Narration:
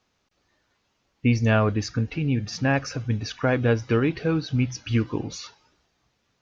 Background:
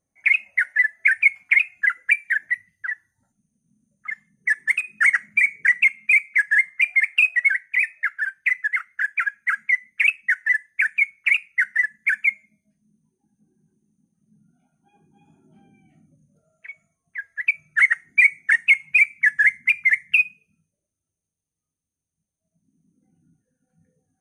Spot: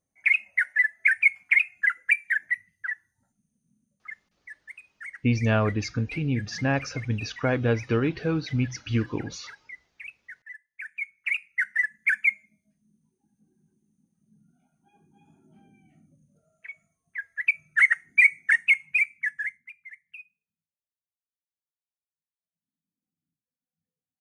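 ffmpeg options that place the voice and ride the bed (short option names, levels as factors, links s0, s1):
-filter_complex "[0:a]adelay=4000,volume=0.75[s0];[1:a]volume=7.5,afade=t=out:st=3.67:d=0.75:silence=0.1,afade=t=in:st=10.72:d=1.36:silence=0.0891251,afade=t=out:st=18.43:d=1.27:silence=0.0562341[s1];[s0][s1]amix=inputs=2:normalize=0"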